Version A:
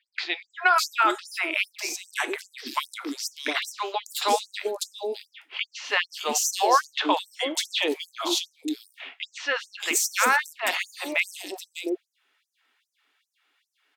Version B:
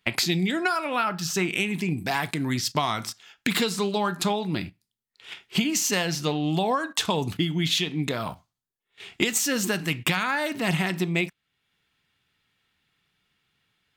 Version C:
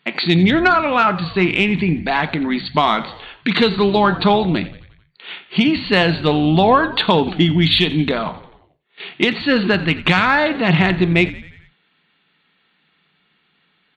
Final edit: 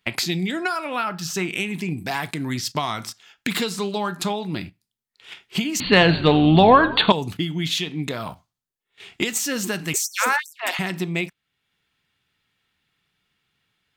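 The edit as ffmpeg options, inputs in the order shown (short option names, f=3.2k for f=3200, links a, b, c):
-filter_complex "[1:a]asplit=3[a][b][c];[a]atrim=end=5.802[d];[2:a]atrim=start=5.798:end=7.122[e];[b]atrim=start=7.118:end=9.942[f];[0:a]atrim=start=9.938:end=10.792[g];[c]atrim=start=10.788[h];[d][e]acrossfade=d=0.004:c1=hsin:c2=hsin[i];[i][f]acrossfade=d=0.004:c1=hsin:c2=hsin[j];[j][g]acrossfade=d=0.004:c1=hsin:c2=hsin[k];[k][h]acrossfade=d=0.004:c1=hsin:c2=hsin"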